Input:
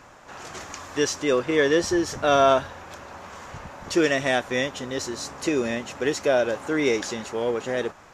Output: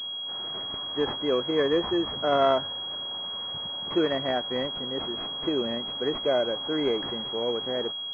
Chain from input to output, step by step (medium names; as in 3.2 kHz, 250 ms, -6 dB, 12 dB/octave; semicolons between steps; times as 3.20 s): high-pass 120 Hz 12 dB/octave; class-D stage that switches slowly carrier 3.3 kHz; trim -3.5 dB